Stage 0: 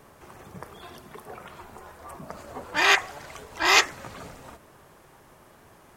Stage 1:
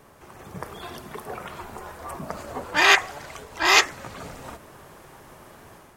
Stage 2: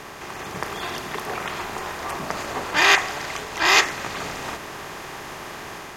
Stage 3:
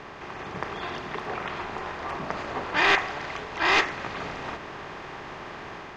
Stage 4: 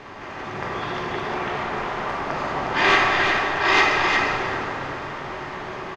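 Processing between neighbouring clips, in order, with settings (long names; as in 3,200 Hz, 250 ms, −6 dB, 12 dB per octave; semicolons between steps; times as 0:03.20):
automatic gain control gain up to 6.5 dB
compressor on every frequency bin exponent 0.6; level −1.5 dB
wavefolder on the positive side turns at −10.5 dBFS; high-frequency loss of the air 190 metres; level −2 dB
on a send: single-tap delay 357 ms −5 dB; on the sum: dense smooth reverb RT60 2.8 s, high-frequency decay 0.55×, pre-delay 0 ms, DRR −3.5 dB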